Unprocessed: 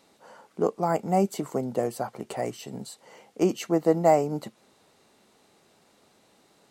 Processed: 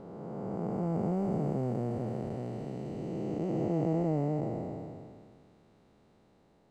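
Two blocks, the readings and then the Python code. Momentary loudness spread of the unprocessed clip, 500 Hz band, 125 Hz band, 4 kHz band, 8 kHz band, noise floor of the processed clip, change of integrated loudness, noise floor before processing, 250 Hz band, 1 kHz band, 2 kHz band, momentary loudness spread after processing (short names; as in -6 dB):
17 LU, -9.0 dB, +2.0 dB, under -15 dB, under -20 dB, -65 dBFS, -7.0 dB, -63 dBFS, -3.0 dB, -12.0 dB, -14.0 dB, 11 LU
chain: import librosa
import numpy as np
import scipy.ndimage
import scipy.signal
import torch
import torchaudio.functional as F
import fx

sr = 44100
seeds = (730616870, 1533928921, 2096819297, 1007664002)

y = fx.spec_blur(x, sr, span_ms=1040.0)
y = fx.riaa(y, sr, side='playback')
y = y * 10.0 ** (-4.0 / 20.0)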